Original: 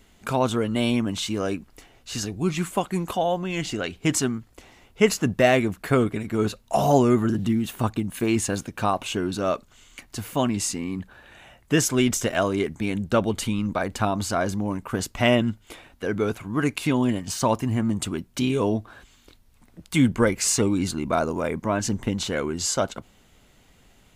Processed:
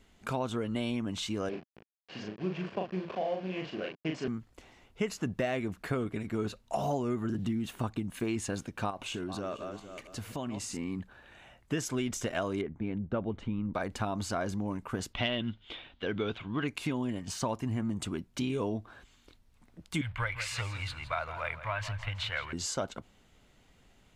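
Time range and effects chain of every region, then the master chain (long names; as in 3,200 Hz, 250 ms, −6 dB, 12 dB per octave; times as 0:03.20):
0:01.49–0:04.28: hold until the input has moved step −28.5 dBFS + loudspeaker in its box 210–3,900 Hz, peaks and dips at 280 Hz −7 dB, 880 Hz −8 dB, 1,300 Hz −9 dB, 2,000 Hz −6 dB, 3,700 Hz −10 dB + double-tracking delay 38 ms −3 dB
0:08.90–0:10.77: feedback delay that plays each chunk backwards 225 ms, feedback 47%, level −11 dB + downward compressor, threshold −26 dBFS
0:12.61–0:13.74: head-to-tape spacing loss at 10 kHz 33 dB + notch filter 4,700 Hz, Q 9.2 + one half of a high-frequency compander decoder only
0:15.13–0:16.68: hard clipping −12.5 dBFS + low-pass with resonance 3,400 Hz, resonance Q 4.7
0:20.01–0:22.53: mu-law and A-law mismatch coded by mu + drawn EQ curve 120 Hz 0 dB, 210 Hz −29 dB, 410 Hz −23 dB, 580 Hz −6 dB, 2,300 Hz +8 dB, 4,000 Hz +1 dB, 6,200 Hz −13 dB, 12,000 Hz −8 dB + repeating echo 164 ms, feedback 41%, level −13.5 dB
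whole clip: downward compressor 6 to 1, threshold −22 dBFS; high-shelf EQ 10,000 Hz −11 dB; level −6 dB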